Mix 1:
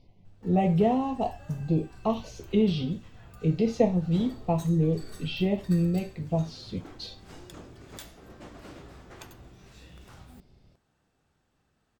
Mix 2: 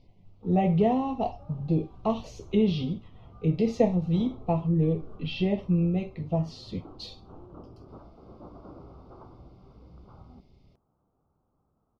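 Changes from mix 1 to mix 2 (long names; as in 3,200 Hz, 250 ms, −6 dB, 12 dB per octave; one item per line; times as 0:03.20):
background: add Butterworth low-pass 1,300 Hz 72 dB per octave
master: add high-shelf EQ 7,100 Hz −6 dB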